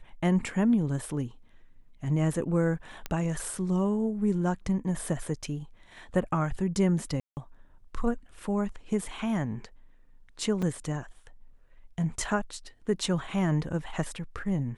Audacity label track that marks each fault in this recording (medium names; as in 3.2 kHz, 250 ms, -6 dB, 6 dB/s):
3.060000	3.060000	pop -18 dBFS
7.200000	7.370000	dropout 169 ms
10.620000	10.630000	dropout 5.1 ms